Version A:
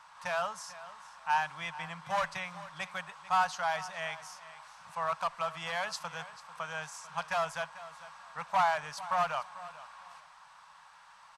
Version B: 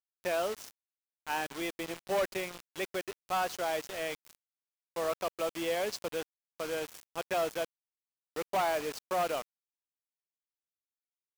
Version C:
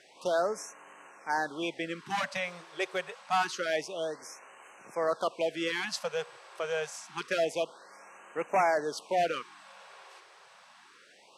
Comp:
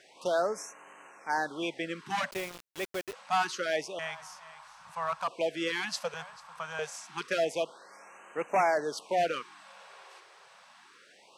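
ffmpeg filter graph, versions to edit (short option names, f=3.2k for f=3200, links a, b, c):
-filter_complex "[0:a]asplit=2[a][b];[2:a]asplit=4[c][d][e][f];[c]atrim=end=2.312[g];[1:a]atrim=start=2.308:end=3.132[h];[d]atrim=start=3.128:end=3.992[i];[a]atrim=start=3.988:end=5.282[j];[e]atrim=start=5.278:end=6.142[k];[b]atrim=start=6.138:end=6.792[l];[f]atrim=start=6.788[m];[g][h]acrossfade=d=0.004:c1=hsin:c2=hsin[n];[n][i]acrossfade=d=0.004:c1=hsin:c2=hsin[o];[o][j]acrossfade=d=0.004:c1=hsin:c2=hsin[p];[p][k]acrossfade=d=0.004:c1=hsin:c2=hsin[q];[q][l]acrossfade=d=0.004:c1=hsin:c2=hsin[r];[r][m]acrossfade=d=0.004:c1=hsin:c2=hsin"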